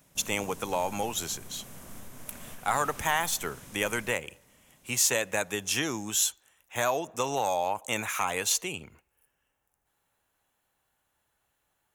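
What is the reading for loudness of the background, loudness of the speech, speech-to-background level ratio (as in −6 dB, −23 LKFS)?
−47.0 LKFS, −29.0 LKFS, 18.0 dB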